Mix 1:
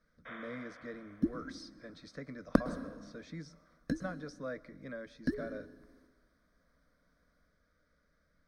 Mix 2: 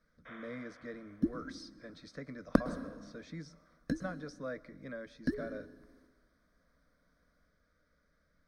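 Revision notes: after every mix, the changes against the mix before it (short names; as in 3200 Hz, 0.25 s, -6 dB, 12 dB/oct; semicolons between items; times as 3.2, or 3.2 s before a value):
first sound -4.0 dB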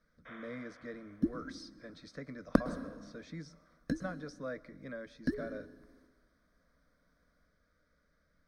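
none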